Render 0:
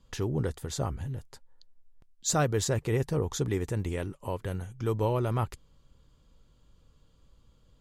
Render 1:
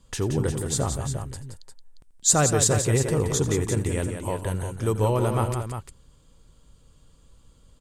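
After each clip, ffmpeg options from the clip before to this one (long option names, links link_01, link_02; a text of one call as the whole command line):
ffmpeg -i in.wav -filter_complex "[0:a]equalizer=frequency=8600:width=2.1:gain=13,asplit=2[link_01][link_02];[link_02]aecho=0:1:85|174|352:0.15|0.422|0.355[link_03];[link_01][link_03]amix=inputs=2:normalize=0,volume=4.5dB" out.wav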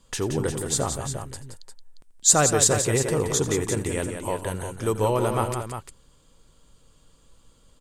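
ffmpeg -i in.wav -af "equalizer=frequency=63:width=0.36:gain=-8.5,volume=2.5dB" out.wav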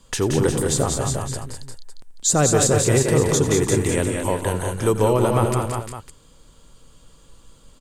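ffmpeg -i in.wav -filter_complex "[0:a]acrossover=split=500[link_01][link_02];[link_02]acompressor=threshold=-30dB:ratio=2[link_03];[link_01][link_03]amix=inputs=2:normalize=0,aecho=1:1:205:0.473,volume=6dB" out.wav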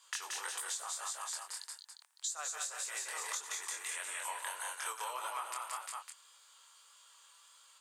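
ffmpeg -i in.wav -af "highpass=frequency=980:width=0.5412,highpass=frequency=980:width=1.3066,acompressor=threshold=-33dB:ratio=16,flanger=delay=19.5:depth=5.8:speed=1.7" out.wav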